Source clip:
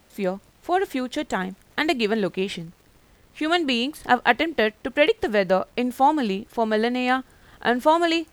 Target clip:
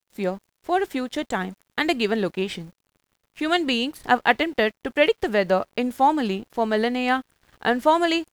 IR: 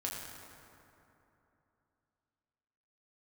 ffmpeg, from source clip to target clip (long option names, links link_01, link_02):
-af "aeval=exprs='sgn(val(0))*max(abs(val(0))-0.00335,0)':channel_layout=same"